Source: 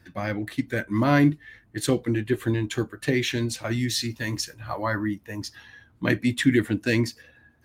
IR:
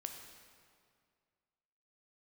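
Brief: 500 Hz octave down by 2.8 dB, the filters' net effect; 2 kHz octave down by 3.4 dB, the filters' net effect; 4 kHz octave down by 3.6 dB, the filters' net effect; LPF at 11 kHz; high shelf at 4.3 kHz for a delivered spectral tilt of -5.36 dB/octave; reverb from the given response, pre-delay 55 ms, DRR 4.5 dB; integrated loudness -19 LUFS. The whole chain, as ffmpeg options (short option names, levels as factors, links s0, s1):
-filter_complex "[0:a]lowpass=11000,equalizer=f=500:t=o:g=-4,equalizer=f=2000:t=o:g=-3.5,equalizer=f=4000:t=o:g=-7.5,highshelf=f=4300:g=6.5,asplit=2[s0][s1];[1:a]atrim=start_sample=2205,adelay=55[s2];[s1][s2]afir=irnorm=-1:irlink=0,volume=0.794[s3];[s0][s3]amix=inputs=2:normalize=0,volume=2.11"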